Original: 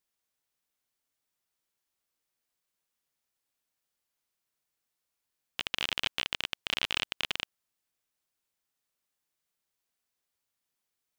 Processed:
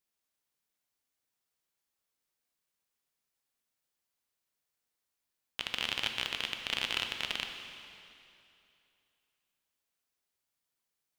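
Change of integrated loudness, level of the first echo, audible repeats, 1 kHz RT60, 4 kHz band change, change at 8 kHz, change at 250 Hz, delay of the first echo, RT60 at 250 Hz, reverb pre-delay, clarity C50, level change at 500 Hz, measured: −2.0 dB, no echo audible, no echo audible, 2.7 s, −1.5 dB, −1.5 dB, −0.5 dB, no echo audible, 2.7 s, 7 ms, 5.5 dB, −1.0 dB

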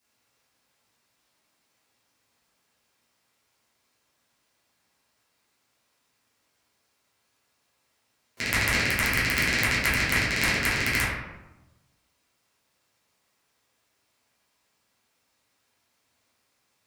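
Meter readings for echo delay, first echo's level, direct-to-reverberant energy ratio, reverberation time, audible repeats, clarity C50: no echo audible, no echo audible, −11.5 dB, 1.0 s, no echo audible, 0.0 dB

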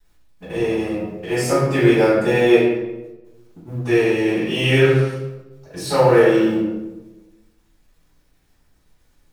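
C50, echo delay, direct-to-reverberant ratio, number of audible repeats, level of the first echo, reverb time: 1.0 dB, no echo audible, −12.5 dB, no echo audible, no echo audible, 1.1 s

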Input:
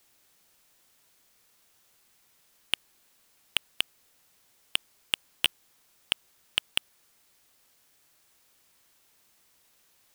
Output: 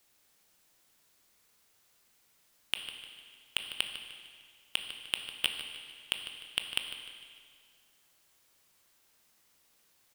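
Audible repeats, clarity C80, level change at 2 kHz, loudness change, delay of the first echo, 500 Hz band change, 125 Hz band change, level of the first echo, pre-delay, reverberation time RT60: 2, 6.5 dB, −3.5 dB, −4.5 dB, 151 ms, −3.0 dB, −3.5 dB, −12.0 dB, 16 ms, 2.0 s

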